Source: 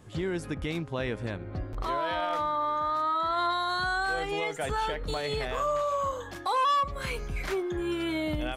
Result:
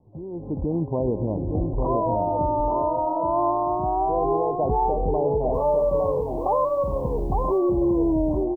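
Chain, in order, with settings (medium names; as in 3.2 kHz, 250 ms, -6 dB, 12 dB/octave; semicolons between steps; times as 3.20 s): steep low-pass 1 kHz 96 dB/octave; dynamic bell 320 Hz, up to +3 dB, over -45 dBFS, Q 0.77; peak limiter -25 dBFS, peak gain reduction 6 dB; level rider gain up to 15 dB; 5.54–7.58 s: word length cut 10-bit, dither triangular; delay 857 ms -4.5 dB; trim -6 dB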